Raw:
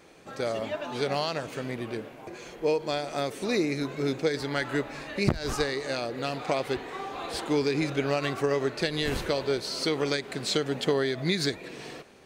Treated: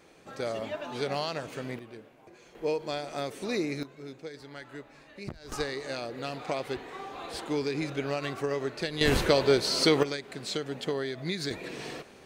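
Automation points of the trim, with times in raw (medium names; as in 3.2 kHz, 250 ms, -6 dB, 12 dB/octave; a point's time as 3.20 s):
-3 dB
from 1.79 s -12 dB
from 2.55 s -4 dB
from 3.83 s -15 dB
from 5.52 s -4.5 dB
from 9.01 s +5 dB
from 10.03 s -6 dB
from 11.51 s +2 dB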